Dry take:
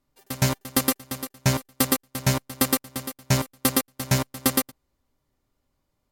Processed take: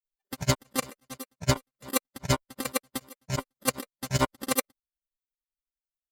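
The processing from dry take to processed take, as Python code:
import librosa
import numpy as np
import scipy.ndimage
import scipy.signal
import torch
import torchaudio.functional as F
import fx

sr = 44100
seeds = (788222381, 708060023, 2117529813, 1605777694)

y = fx.bin_expand(x, sr, power=2.0)
y = fx.over_compress(y, sr, threshold_db=-27.0, ratio=-0.5)
y = fx.granulator(y, sr, seeds[0], grain_ms=100.0, per_s=11.0, spray_ms=35.0, spread_st=0)
y = y * librosa.db_to_amplitude(7.0)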